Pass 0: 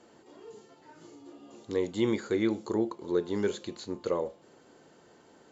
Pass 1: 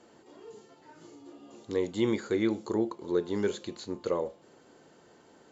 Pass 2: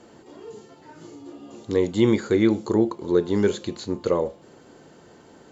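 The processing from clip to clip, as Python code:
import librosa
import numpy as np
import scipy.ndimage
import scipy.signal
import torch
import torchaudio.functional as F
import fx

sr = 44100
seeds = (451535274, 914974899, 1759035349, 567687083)

y1 = x
y2 = fx.low_shelf(y1, sr, hz=200.0, db=7.5)
y2 = y2 * librosa.db_to_amplitude(6.5)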